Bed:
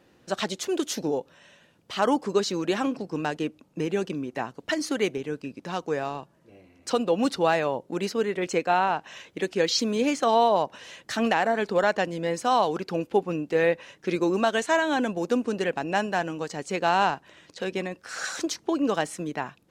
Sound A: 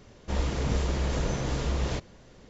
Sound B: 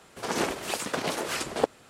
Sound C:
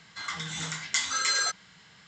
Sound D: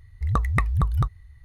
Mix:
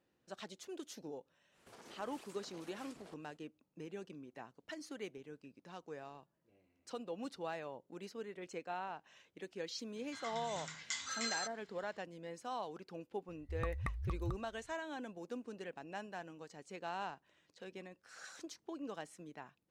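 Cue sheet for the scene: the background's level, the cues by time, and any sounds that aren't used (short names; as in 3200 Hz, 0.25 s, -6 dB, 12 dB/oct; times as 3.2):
bed -20 dB
1.5 add B -15.5 dB, fades 0.10 s + compressor 4:1, threshold -40 dBFS
9.96 add C -13.5 dB
13.28 add D -17.5 dB
not used: A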